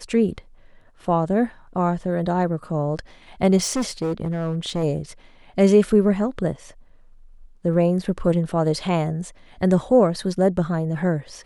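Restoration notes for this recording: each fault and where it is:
3.57–4.84 s: clipped -19.5 dBFS

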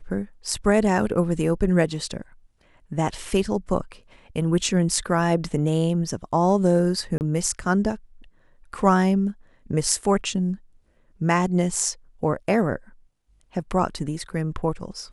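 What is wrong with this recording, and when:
7.18–7.21 s: dropout 29 ms

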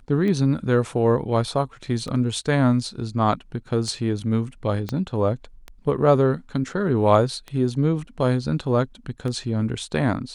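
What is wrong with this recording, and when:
tick 33 1/3 rpm -19 dBFS
4.89 s: pop -14 dBFS

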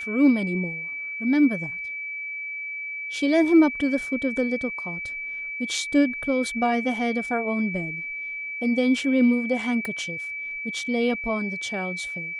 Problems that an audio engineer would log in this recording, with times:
whine 2.3 kHz -30 dBFS
9.85 s: pop

